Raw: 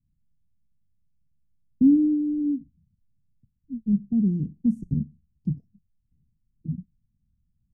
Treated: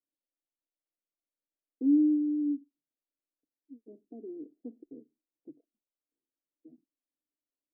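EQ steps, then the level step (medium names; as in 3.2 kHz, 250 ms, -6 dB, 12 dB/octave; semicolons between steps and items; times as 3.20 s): elliptic high-pass 300 Hz, stop band 40 dB; resonant low-pass 560 Hz, resonance Q 3.4; -5.0 dB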